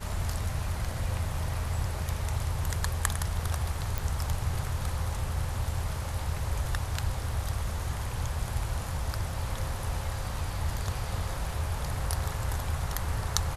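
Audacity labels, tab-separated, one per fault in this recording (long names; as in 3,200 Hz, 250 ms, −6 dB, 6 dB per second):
3.980000	3.980000	click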